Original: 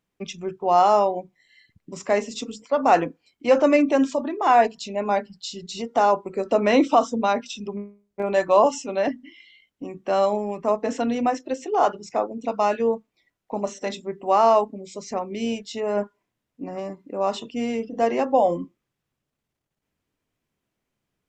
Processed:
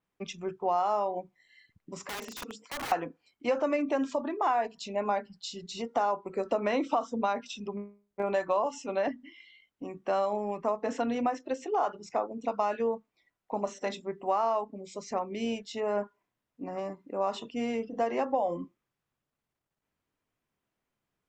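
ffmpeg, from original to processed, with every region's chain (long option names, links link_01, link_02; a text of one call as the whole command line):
ffmpeg -i in.wav -filter_complex "[0:a]asettb=1/sr,asplit=3[link_01][link_02][link_03];[link_01]atrim=end=2.074[link_04];[link_02]atrim=start=2.07:end=2.92,asetpts=PTS-STARTPTS,afade=type=in:duration=0.004:curve=qsin,afade=type=out:start_time=0.846:duration=0.004:curve=qsin,highpass=frequency=270:poles=1,acompressor=threshold=-25dB:ratio=12:attack=3.2:release=140:knee=1:detection=peak,aeval=exprs='(mod(25.1*val(0)+1,2)-1)/25.1':channel_layout=same[link_05];[link_03]atrim=start=2.916[link_06];[link_04][link_05]acrossfade=duration=0.004:curve1=hsin:curve2=qsin[link_07];[link_07][link_06]acrossfade=duration=0.004:curve1=qsin:curve2=hsin,equalizer=frequency=1100:width_type=o:width=1.9:gain=5.5,acompressor=threshold=-18dB:ratio=6,adynamicequalizer=threshold=0.00708:dfrequency=5100:dqfactor=0.7:tfrequency=5100:tqfactor=0.7:attack=5:release=100:ratio=0.375:range=2:mode=cutabove:tftype=highshelf,volume=-6.5dB" out.wav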